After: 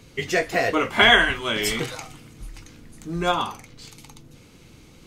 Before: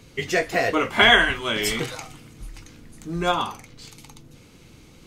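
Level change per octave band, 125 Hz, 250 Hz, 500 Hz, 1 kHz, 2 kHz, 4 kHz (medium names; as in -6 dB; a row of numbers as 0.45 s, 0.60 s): 0.0 dB, 0.0 dB, 0.0 dB, 0.0 dB, 0.0 dB, 0.0 dB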